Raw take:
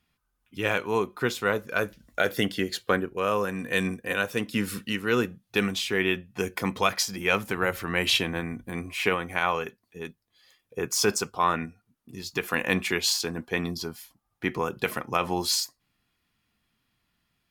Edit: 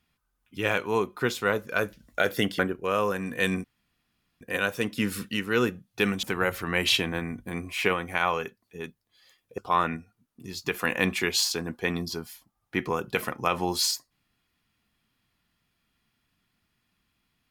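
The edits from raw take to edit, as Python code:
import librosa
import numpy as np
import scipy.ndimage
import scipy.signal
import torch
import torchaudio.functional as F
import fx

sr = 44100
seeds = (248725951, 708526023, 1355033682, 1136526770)

y = fx.edit(x, sr, fx.cut(start_s=2.59, length_s=0.33),
    fx.insert_room_tone(at_s=3.97, length_s=0.77),
    fx.cut(start_s=5.79, length_s=1.65),
    fx.cut(start_s=10.79, length_s=0.48), tone=tone)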